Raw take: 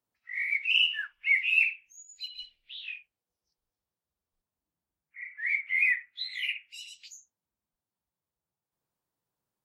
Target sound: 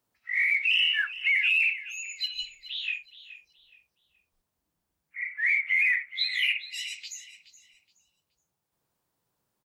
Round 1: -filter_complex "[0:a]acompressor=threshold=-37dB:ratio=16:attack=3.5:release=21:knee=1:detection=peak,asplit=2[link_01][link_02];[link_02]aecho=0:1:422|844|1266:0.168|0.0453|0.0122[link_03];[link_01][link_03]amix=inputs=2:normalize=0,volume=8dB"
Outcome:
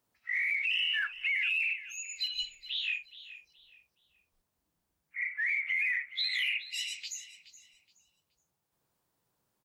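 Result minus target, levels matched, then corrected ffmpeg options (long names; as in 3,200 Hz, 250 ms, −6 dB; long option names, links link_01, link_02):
downward compressor: peak gain reduction +7 dB
-filter_complex "[0:a]acompressor=threshold=-29.5dB:ratio=16:attack=3.5:release=21:knee=1:detection=peak,asplit=2[link_01][link_02];[link_02]aecho=0:1:422|844|1266:0.168|0.0453|0.0122[link_03];[link_01][link_03]amix=inputs=2:normalize=0,volume=8dB"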